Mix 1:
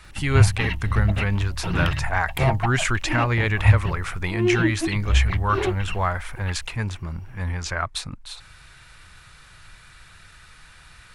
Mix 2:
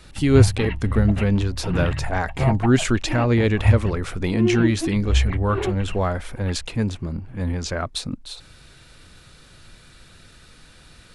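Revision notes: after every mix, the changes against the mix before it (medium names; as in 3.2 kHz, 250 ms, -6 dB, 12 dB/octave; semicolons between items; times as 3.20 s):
speech: add graphic EQ 250/500/1000/2000/4000 Hz +11/+7/-5/-5/+3 dB; background: add distance through air 360 m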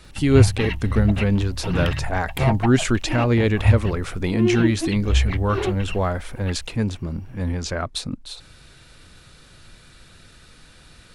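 background: remove distance through air 360 m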